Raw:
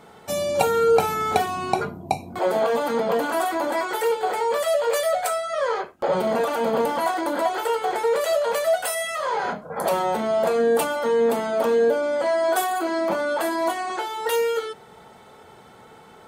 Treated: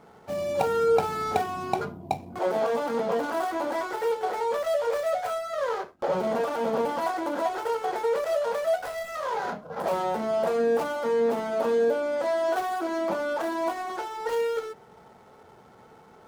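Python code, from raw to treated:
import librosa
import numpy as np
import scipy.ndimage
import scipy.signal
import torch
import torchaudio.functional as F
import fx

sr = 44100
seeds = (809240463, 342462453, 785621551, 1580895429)

y = scipy.signal.medfilt(x, 15)
y = y * 10.0 ** (-4.0 / 20.0)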